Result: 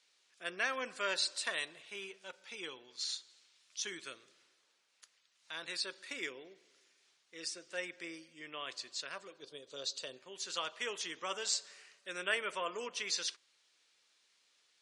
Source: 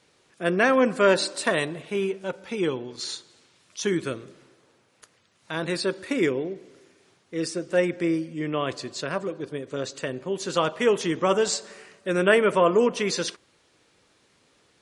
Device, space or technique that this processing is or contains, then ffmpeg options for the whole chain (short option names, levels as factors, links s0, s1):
piezo pickup straight into a mixer: -filter_complex "[0:a]asettb=1/sr,asplit=3[s0][s1][s2];[s0]atrim=end=9.424[s3];[s1]atrim=start=9.42:end=10.17,asetpts=PTS-STARTPTS,afade=t=in:d=0.004:c=qsin,afade=t=out:st=0.746:d=0.004:c=qsin,equalizer=f=125:t=o:w=1:g=5,equalizer=f=500:t=o:w=1:g=6,equalizer=f=2000:t=o:w=1:g=-10,equalizer=f=4000:t=o:w=1:g=9[s4];[s2]atrim=start=10.166[s5];[s3][s4]acrossfade=d=0.004:c1=hsin:c2=qsin[s6];[s6][s5]acrossfade=d=0.004:c1=qsin:c2=hsin,lowpass=5100,aderivative,volume=1.12"